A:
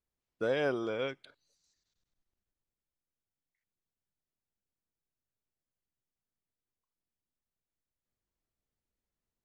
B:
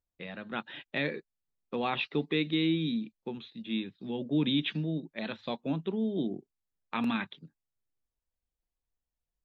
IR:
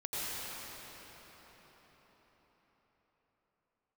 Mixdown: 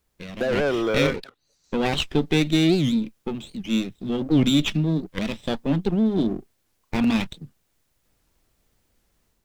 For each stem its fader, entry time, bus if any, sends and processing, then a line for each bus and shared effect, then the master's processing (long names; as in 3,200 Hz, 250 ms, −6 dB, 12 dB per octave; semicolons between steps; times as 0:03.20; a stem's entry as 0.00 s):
0.0 dB, 0.00 s, no send, leveller curve on the samples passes 2; multiband upward and downward compressor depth 70%
+3.0 dB, 0.00 s, no send, lower of the sound and its delayed copy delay 0.34 ms; low-shelf EQ 130 Hz +8 dB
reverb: not used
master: automatic gain control gain up to 5 dB; wow of a warped record 78 rpm, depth 250 cents